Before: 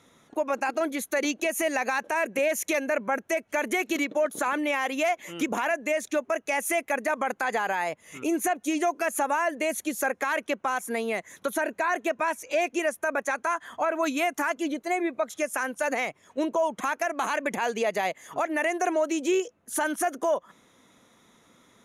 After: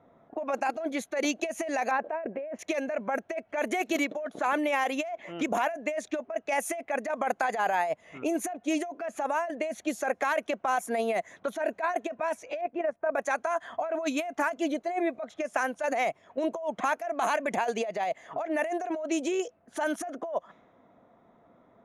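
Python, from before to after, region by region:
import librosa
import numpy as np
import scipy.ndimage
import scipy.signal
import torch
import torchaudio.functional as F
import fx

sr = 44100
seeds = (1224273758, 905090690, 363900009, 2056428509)

y = fx.chain(x, sr, fx.lowpass(hz=2000.0, slope=12),
    fx.peak_eq(hz=440.0, db=6.5, octaves=1.6), at=(1.91, 2.59))
y = fx.chain(y, sr, fx.lowpass(hz=1600.0, slope=12),
    fx.level_steps(step_db=10), at=(12.61, 13.15))
y = fx.peak_eq(y, sr, hz=680.0, db=11.5, octaves=0.41)
y = fx.over_compress(y, sr, threshold_db=-24.0, ratio=-1.0)
y = fx.env_lowpass(y, sr, base_hz=1100.0, full_db=-19.0)
y = F.gain(torch.from_numpy(y), -5.0).numpy()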